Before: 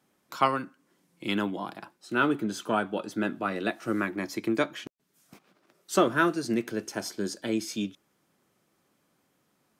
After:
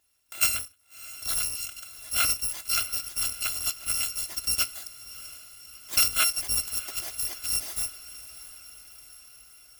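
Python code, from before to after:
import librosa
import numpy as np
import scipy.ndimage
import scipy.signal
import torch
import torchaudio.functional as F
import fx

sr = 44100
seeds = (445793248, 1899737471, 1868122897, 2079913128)

y = fx.bit_reversed(x, sr, seeds[0], block=256)
y = fx.echo_diffused(y, sr, ms=664, feedback_pct=62, wet_db=-16)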